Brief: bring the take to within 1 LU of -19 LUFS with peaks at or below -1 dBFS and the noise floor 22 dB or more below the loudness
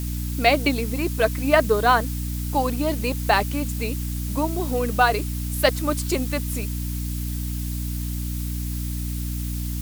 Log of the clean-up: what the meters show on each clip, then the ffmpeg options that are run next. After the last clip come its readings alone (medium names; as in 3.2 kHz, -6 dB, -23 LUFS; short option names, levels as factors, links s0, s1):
hum 60 Hz; highest harmonic 300 Hz; hum level -25 dBFS; noise floor -28 dBFS; noise floor target -46 dBFS; loudness -24.0 LUFS; peak level -3.5 dBFS; loudness target -19.0 LUFS
-> -af "bandreject=f=60:t=h:w=6,bandreject=f=120:t=h:w=6,bandreject=f=180:t=h:w=6,bandreject=f=240:t=h:w=6,bandreject=f=300:t=h:w=6"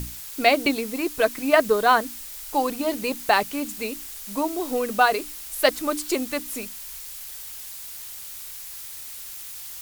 hum not found; noise floor -38 dBFS; noise floor target -47 dBFS
-> -af "afftdn=nr=9:nf=-38"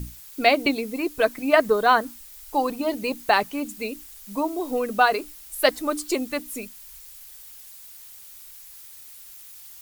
noise floor -45 dBFS; noise floor target -46 dBFS
-> -af "afftdn=nr=6:nf=-45"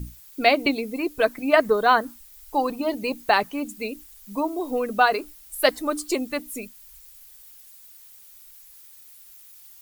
noise floor -49 dBFS; loudness -23.5 LUFS; peak level -4.0 dBFS; loudness target -19.0 LUFS
-> -af "volume=1.68,alimiter=limit=0.891:level=0:latency=1"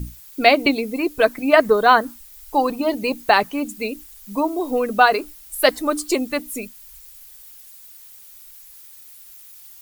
loudness -19.0 LUFS; peak level -1.0 dBFS; noise floor -44 dBFS